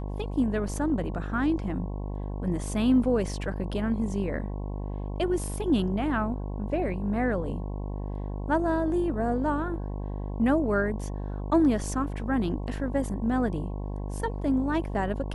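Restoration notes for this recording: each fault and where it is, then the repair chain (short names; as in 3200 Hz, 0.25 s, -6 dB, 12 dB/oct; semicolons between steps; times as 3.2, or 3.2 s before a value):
buzz 50 Hz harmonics 22 -33 dBFS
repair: de-hum 50 Hz, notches 22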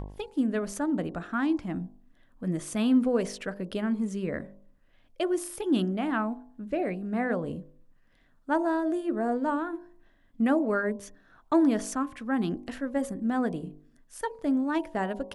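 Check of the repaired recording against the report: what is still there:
none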